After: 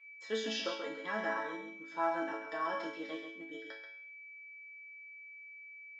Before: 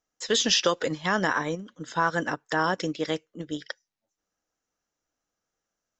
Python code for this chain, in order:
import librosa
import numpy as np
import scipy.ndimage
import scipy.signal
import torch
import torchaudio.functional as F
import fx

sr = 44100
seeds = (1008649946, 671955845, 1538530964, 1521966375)

p1 = fx.high_shelf(x, sr, hz=2700.0, db=-8.5)
p2 = p1 + 10.0 ** (-46.0 / 20.0) * np.sin(2.0 * np.pi * 2300.0 * np.arange(len(p1)) / sr)
p3 = fx.resonator_bank(p2, sr, root=57, chord='major', decay_s=0.51)
p4 = fx.quant_float(p3, sr, bits=2)
p5 = p3 + (p4 * 10.0 ** (-12.0 / 20.0))
p6 = fx.bandpass_edges(p5, sr, low_hz=280.0, high_hz=5100.0)
p7 = p6 + fx.echo_single(p6, sr, ms=134, db=-7.5, dry=0)
y = p7 * 10.0 ** (9.0 / 20.0)